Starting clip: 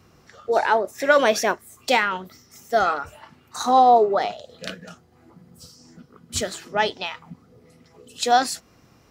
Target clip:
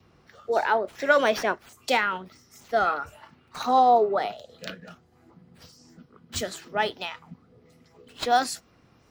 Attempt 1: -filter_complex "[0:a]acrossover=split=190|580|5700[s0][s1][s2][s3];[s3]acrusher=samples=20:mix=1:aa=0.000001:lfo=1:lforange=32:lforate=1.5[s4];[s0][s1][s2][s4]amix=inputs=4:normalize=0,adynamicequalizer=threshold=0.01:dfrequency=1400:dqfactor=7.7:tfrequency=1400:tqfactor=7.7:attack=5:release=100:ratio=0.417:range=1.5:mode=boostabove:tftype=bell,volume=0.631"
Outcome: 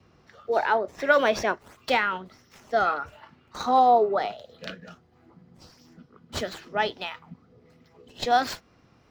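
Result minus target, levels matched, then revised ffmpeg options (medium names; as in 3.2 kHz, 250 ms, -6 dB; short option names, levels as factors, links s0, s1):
decimation with a swept rate: distortion +24 dB
-filter_complex "[0:a]acrossover=split=190|580|5700[s0][s1][s2][s3];[s3]acrusher=samples=4:mix=1:aa=0.000001:lfo=1:lforange=6.4:lforate=1.5[s4];[s0][s1][s2][s4]amix=inputs=4:normalize=0,adynamicequalizer=threshold=0.01:dfrequency=1400:dqfactor=7.7:tfrequency=1400:tqfactor=7.7:attack=5:release=100:ratio=0.417:range=1.5:mode=boostabove:tftype=bell,volume=0.631"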